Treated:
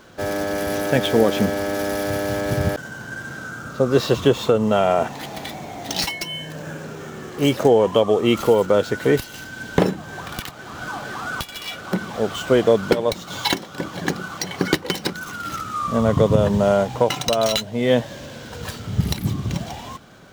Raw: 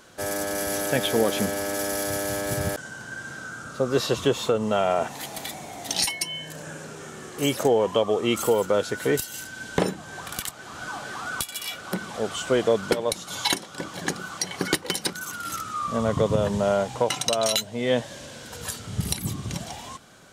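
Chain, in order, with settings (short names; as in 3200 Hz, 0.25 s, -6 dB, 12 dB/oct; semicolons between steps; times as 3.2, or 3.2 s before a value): median filter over 5 samples; low shelf 440 Hz +4.5 dB; gain +3.5 dB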